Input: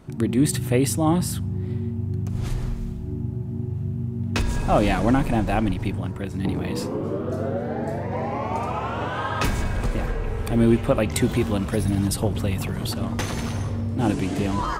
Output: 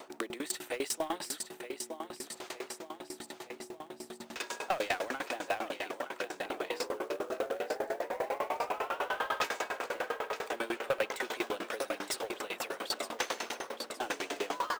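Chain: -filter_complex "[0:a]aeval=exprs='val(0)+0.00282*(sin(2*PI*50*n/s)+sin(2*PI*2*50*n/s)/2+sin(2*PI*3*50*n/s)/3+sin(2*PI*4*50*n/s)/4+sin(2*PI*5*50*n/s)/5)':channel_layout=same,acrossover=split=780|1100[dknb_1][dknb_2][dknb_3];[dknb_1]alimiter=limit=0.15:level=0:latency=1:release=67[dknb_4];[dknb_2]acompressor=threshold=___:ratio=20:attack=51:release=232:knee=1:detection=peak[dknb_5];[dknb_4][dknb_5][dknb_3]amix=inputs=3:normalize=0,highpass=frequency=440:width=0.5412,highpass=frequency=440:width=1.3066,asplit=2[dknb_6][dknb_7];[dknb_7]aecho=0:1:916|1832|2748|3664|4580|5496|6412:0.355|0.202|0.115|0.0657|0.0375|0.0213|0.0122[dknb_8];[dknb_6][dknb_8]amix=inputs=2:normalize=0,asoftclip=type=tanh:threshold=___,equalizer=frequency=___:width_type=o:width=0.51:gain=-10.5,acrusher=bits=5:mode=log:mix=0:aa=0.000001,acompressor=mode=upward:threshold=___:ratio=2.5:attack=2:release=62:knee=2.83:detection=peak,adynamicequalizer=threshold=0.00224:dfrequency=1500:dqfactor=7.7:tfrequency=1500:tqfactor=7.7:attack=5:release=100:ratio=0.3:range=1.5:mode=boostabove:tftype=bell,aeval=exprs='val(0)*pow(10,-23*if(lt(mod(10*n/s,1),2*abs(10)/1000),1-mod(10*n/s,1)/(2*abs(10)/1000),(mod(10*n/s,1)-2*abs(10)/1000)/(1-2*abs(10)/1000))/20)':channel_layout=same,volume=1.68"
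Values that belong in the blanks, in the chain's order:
0.00355, 0.0596, 11000, 0.0141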